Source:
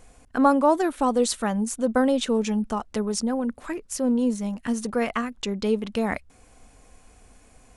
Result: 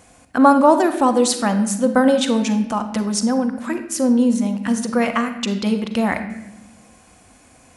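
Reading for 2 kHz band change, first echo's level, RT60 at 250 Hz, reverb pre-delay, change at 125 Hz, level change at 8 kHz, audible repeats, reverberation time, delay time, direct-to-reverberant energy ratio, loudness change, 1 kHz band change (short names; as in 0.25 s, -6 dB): +7.0 dB, none, 1.6 s, 38 ms, n/a, +7.0 dB, none, 0.95 s, none, 8.0 dB, +6.5 dB, +7.0 dB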